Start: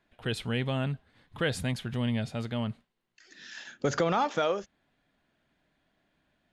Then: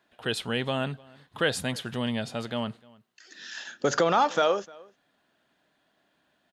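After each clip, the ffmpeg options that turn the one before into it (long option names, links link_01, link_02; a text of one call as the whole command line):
ffmpeg -i in.wav -filter_complex "[0:a]highpass=frequency=390:poles=1,equalizer=frequency=2200:width=4:gain=-6,asplit=2[link_01][link_02];[link_02]adelay=303.2,volume=-24dB,highshelf=frequency=4000:gain=-6.82[link_03];[link_01][link_03]amix=inputs=2:normalize=0,volume=6dB" out.wav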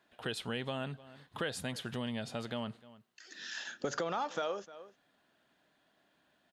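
ffmpeg -i in.wav -af "acompressor=threshold=-35dB:ratio=2.5,volume=-2dB" out.wav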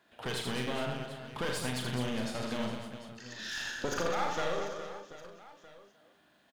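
ffmpeg -i in.wav -filter_complex "[0:a]aeval=exprs='clip(val(0),-1,0.00944)':channel_layout=same,asplit=2[link_01][link_02];[link_02]adelay=40,volume=-6.5dB[link_03];[link_01][link_03]amix=inputs=2:normalize=0,aecho=1:1:80|208|412.8|740.5|1265:0.631|0.398|0.251|0.158|0.1,volume=3dB" out.wav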